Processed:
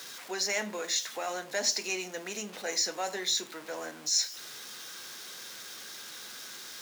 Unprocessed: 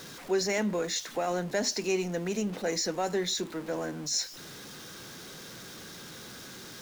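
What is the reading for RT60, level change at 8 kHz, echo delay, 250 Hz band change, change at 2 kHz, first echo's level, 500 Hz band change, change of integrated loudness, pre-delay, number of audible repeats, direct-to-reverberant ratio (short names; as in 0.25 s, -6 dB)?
0.45 s, +3.0 dB, none, -11.0 dB, +1.0 dB, none, -7.0 dB, -2.0 dB, 8 ms, none, 9.5 dB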